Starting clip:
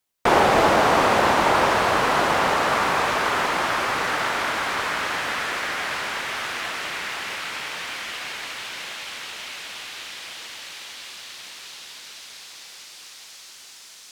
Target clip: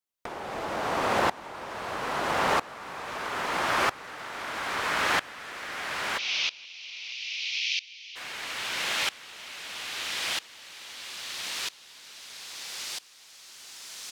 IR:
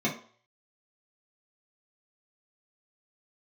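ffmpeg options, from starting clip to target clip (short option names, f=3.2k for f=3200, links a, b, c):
-filter_complex "[0:a]asplit=3[a][b][c];[a]afade=t=out:st=6.17:d=0.02[d];[b]asuperpass=centerf=3800:order=12:qfactor=1,afade=t=in:st=6.17:d=0.02,afade=t=out:st=8.15:d=0.02[e];[c]afade=t=in:st=8.15:d=0.02[f];[d][e][f]amix=inputs=3:normalize=0,asplit=2[g][h];[h]adelay=473,lowpass=f=3.1k:p=1,volume=-22dB,asplit=2[i][j];[j]adelay=473,lowpass=f=3.1k:p=1,volume=0.4,asplit=2[k][l];[l]adelay=473,lowpass=f=3.1k:p=1,volume=0.4[m];[g][i][k][m]amix=inputs=4:normalize=0,acompressor=threshold=-28dB:ratio=8,aeval=exprs='val(0)*pow(10,-22*if(lt(mod(-0.77*n/s,1),2*abs(-0.77)/1000),1-mod(-0.77*n/s,1)/(2*abs(-0.77)/1000),(mod(-0.77*n/s,1)-2*abs(-0.77)/1000)/(1-2*abs(-0.77)/1000))/20)':c=same,volume=8.5dB"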